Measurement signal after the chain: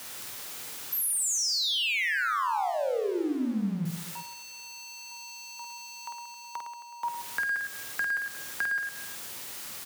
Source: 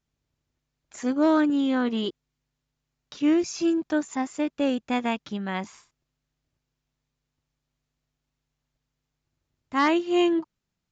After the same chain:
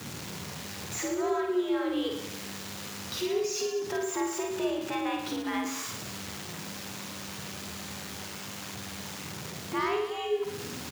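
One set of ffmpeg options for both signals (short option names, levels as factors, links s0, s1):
-filter_complex "[0:a]aeval=exprs='val(0)+0.5*0.0211*sgn(val(0))':c=same,bandreject=f=580:w=12,acompressor=threshold=0.0282:ratio=3,bandreject=f=50:t=h:w=6,bandreject=f=100:t=h:w=6,bandreject=f=150:t=h:w=6,bandreject=f=200:t=h:w=6,bandreject=f=250:t=h:w=6,bandreject=f=300:t=h:w=6,bandreject=f=350:t=h:w=6,afreqshift=77,asplit=2[s0][s1];[s1]aecho=0:1:50|110|182|268.4|372.1:0.631|0.398|0.251|0.158|0.1[s2];[s0][s2]amix=inputs=2:normalize=0"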